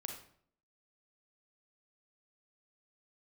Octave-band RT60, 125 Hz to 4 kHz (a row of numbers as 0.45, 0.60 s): 0.70, 0.70, 0.60, 0.55, 0.50, 0.45 s